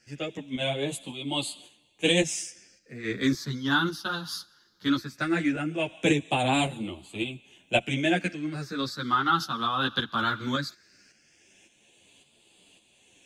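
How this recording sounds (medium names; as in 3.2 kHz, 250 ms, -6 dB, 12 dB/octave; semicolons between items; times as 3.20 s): phasing stages 6, 0.18 Hz, lowest notch 620–1500 Hz; tremolo saw up 1.8 Hz, depth 55%; a shimmering, thickened sound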